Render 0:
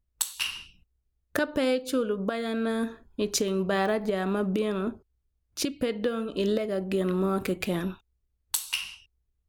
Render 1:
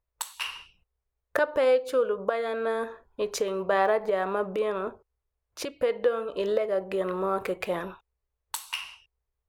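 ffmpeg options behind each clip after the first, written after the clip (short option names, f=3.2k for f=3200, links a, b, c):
-af "equalizer=f=250:t=o:w=1:g=-8,equalizer=f=500:t=o:w=1:g=12,equalizer=f=1k:t=o:w=1:g=11,equalizer=f=2k:t=o:w=1:g=6,volume=-7.5dB"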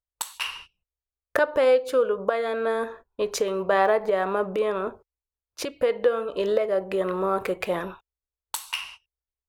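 -af "agate=range=-16dB:threshold=-47dB:ratio=16:detection=peak,volume=3dB"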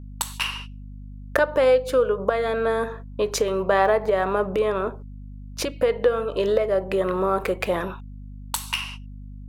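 -filter_complex "[0:a]asplit=2[a][b];[b]acompressor=threshold=-30dB:ratio=6,volume=-1.5dB[c];[a][c]amix=inputs=2:normalize=0,aeval=exprs='val(0)+0.0141*(sin(2*PI*50*n/s)+sin(2*PI*2*50*n/s)/2+sin(2*PI*3*50*n/s)/3+sin(2*PI*4*50*n/s)/4+sin(2*PI*5*50*n/s)/5)':c=same"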